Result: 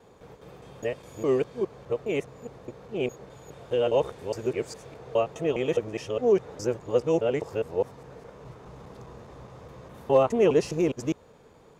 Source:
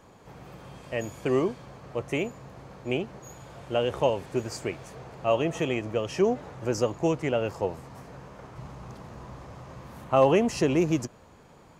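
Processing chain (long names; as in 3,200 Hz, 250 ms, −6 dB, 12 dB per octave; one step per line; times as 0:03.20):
reversed piece by piece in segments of 206 ms
hollow resonant body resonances 450/3,600 Hz, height 9 dB, ringing for 25 ms
level −3.5 dB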